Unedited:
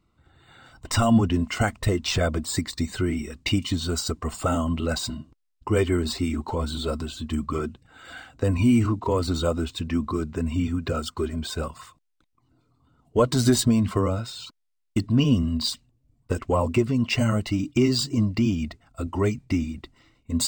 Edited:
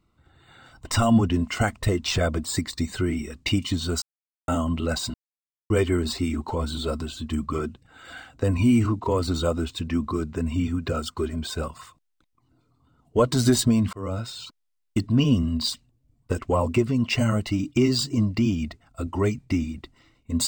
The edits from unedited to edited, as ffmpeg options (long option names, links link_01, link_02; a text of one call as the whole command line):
ffmpeg -i in.wav -filter_complex "[0:a]asplit=6[link_01][link_02][link_03][link_04][link_05][link_06];[link_01]atrim=end=4.02,asetpts=PTS-STARTPTS,afade=type=out:start_time=4.016:duration=0.004:curve=hsin[link_07];[link_02]atrim=start=4.02:end=4.48,asetpts=PTS-STARTPTS,volume=0[link_08];[link_03]atrim=start=4.48:end=5.14,asetpts=PTS-STARTPTS,afade=type=in:duration=0.004:curve=hsin,afade=type=out:start_time=0.656:duration=0.004:curve=hsin[link_09];[link_04]atrim=start=5.14:end=5.7,asetpts=PTS-STARTPTS,volume=0[link_10];[link_05]atrim=start=5.7:end=13.93,asetpts=PTS-STARTPTS,afade=type=in:duration=0.004:curve=hsin,afade=type=out:start_time=8.226:duration=0.004:curve=hsin[link_11];[link_06]atrim=start=13.93,asetpts=PTS-STARTPTS,afade=type=in:duration=0.28[link_12];[link_07][link_08][link_09][link_10][link_11][link_12]concat=n=6:v=0:a=1" out.wav